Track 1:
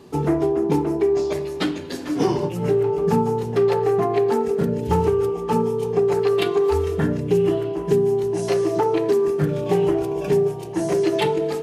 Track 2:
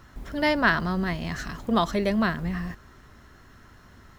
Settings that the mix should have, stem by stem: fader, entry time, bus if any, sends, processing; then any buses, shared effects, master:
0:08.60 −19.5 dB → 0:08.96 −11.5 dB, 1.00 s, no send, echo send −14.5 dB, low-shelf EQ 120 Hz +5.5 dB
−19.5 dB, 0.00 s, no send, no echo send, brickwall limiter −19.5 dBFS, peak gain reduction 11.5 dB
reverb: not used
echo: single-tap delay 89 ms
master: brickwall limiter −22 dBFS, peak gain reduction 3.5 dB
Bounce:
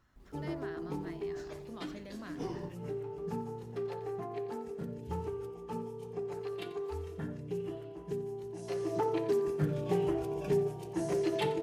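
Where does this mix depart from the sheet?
stem 1: entry 1.00 s → 0.20 s
master: missing brickwall limiter −22 dBFS, peak gain reduction 3.5 dB

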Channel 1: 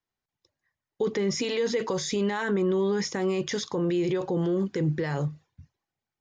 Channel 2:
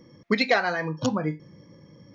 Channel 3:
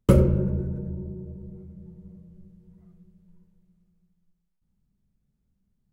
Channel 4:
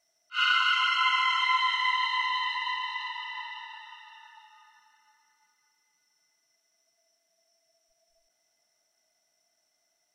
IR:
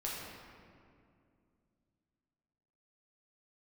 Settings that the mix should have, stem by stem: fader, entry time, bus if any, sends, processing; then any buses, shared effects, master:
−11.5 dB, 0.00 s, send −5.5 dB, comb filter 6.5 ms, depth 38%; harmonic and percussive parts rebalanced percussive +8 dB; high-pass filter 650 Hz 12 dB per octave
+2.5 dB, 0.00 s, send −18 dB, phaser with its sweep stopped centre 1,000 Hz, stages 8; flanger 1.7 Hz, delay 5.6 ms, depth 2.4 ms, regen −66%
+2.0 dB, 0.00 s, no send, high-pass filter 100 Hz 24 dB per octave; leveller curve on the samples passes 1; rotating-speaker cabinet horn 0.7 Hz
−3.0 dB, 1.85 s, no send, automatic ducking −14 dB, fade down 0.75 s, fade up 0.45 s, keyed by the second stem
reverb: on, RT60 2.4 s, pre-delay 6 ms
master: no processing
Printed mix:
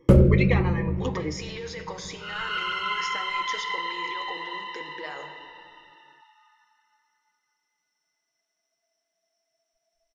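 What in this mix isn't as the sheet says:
stem 3: missing high-pass filter 100 Hz 24 dB per octave
master: extra high-shelf EQ 6,900 Hz −10.5 dB

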